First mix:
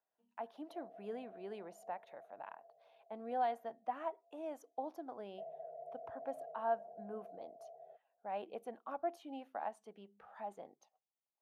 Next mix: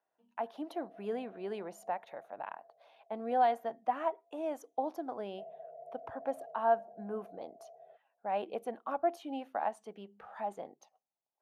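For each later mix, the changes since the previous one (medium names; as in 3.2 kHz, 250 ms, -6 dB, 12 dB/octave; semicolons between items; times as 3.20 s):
speech +7.5 dB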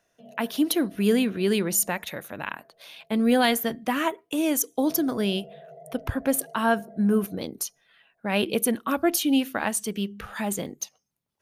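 background: entry -0.50 s; master: remove band-pass filter 750 Hz, Q 3.9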